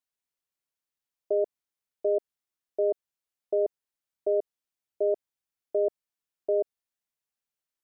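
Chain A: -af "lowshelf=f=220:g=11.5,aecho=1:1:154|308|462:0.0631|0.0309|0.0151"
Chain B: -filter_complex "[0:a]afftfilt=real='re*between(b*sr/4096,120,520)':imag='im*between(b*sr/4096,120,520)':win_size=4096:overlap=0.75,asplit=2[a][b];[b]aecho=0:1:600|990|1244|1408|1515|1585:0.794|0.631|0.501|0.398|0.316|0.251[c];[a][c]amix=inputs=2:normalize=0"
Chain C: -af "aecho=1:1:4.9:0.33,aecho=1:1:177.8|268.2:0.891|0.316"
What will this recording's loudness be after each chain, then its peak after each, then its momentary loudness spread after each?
-28.5, -32.5, -26.5 LUFS; -15.5, -21.0, -15.0 dBFS; 8, 5, 10 LU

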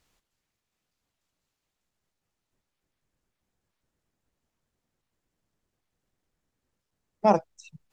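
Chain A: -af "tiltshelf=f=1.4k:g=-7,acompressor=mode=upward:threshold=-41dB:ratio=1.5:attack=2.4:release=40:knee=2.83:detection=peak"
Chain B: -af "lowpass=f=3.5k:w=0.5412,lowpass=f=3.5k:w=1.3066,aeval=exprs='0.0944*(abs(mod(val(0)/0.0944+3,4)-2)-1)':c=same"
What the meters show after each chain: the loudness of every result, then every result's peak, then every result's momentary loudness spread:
-30.5, -31.5 LUFS; -10.5, -20.5 dBFS; 18, 3 LU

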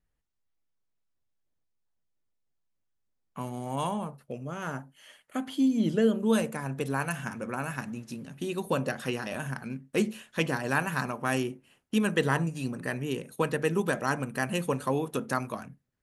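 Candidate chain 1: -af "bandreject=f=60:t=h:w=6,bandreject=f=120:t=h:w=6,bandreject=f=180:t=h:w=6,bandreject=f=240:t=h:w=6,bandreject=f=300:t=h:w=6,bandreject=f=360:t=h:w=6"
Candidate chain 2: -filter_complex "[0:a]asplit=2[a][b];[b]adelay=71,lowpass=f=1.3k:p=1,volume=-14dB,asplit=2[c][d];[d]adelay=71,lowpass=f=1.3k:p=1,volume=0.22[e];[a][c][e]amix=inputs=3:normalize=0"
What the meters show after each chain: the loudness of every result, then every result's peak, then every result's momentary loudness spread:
-30.5, -30.5 LUFS; -10.5, -11.0 dBFS; 13, 12 LU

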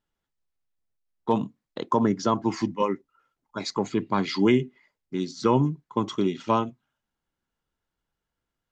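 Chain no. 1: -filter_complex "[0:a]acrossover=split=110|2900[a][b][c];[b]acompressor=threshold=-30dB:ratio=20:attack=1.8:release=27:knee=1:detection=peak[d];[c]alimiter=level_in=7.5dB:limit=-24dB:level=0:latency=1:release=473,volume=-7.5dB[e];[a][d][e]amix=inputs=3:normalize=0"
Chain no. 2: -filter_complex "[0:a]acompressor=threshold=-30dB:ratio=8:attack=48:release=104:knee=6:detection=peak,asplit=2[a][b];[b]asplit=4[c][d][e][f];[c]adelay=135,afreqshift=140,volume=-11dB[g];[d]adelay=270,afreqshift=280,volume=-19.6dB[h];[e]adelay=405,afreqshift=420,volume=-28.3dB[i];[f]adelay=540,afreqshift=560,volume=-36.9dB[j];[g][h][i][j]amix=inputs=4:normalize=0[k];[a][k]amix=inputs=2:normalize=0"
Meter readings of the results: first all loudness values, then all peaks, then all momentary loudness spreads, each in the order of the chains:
-35.5, -32.0 LUFS; -20.5, -12.5 dBFS; 8, 9 LU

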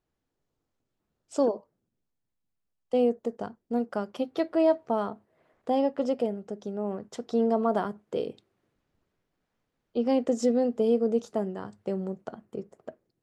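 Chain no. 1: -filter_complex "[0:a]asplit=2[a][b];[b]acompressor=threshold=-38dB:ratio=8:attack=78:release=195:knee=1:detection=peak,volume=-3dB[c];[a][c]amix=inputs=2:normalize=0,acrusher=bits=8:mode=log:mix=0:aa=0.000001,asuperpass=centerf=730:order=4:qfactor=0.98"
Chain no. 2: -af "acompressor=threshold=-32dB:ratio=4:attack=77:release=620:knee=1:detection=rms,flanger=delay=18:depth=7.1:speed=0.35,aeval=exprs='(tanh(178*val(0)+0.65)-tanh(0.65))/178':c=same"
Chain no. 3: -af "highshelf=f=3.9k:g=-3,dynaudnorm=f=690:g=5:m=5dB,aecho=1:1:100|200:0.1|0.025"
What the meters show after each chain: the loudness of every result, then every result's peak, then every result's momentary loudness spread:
-30.0, -50.0, -23.5 LUFS; -12.5, -41.0, -7.0 dBFS; 13, 7, 15 LU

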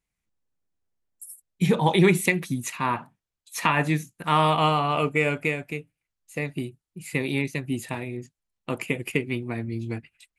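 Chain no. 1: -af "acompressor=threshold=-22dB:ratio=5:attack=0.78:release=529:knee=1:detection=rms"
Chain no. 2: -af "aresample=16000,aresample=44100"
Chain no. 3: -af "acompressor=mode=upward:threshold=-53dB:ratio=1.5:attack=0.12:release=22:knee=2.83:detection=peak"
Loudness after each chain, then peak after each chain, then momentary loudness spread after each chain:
-33.0, -25.5, -25.5 LUFS; -16.0, -7.0, -7.0 dBFS; 10, 16, 17 LU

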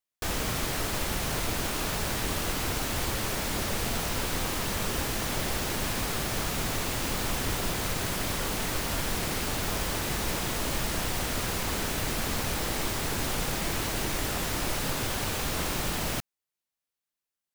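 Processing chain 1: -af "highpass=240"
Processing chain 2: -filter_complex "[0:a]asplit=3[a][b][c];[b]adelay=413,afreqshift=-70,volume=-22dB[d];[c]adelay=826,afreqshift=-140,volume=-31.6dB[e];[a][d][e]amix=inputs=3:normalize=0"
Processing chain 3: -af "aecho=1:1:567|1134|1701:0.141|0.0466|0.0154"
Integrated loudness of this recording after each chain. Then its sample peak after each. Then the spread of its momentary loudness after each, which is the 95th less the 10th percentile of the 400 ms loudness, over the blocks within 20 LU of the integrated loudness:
-30.5, -29.5, -29.5 LUFS; -18.0, -16.5, -16.0 dBFS; 0, 0, 0 LU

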